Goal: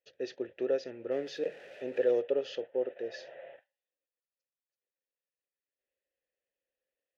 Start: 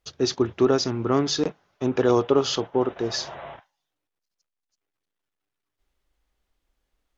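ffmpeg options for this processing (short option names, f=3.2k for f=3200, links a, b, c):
-filter_complex "[0:a]asettb=1/sr,asplit=3[a][b][c];[a]atrim=end=1.114[d];[b]atrim=start=1.11:end=2.21,asetpts=PTS-STARTPTS,afade=t=in:d=0.004:c=qsin,afade=t=out:st=1.096:d=0.004:c=qsin,aeval=exprs='val(0)+0.5*0.0251*sgn(val(0))':c=same[e];[c]atrim=start=2.206[f];[d][e]acrossfade=d=0.004:c1=hsin:c2=qsin[g];[g][f]acrossfade=d=0.004:c1=qsin:c2=hsin,asplit=3[h][i][j];[h]bandpass=f=530:t=q:w=8,volume=0dB[k];[i]bandpass=f=1.84k:t=q:w=8,volume=-6dB[l];[j]bandpass=f=2.48k:t=q:w=8,volume=-9dB[m];[k][l][m]amix=inputs=3:normalize=0"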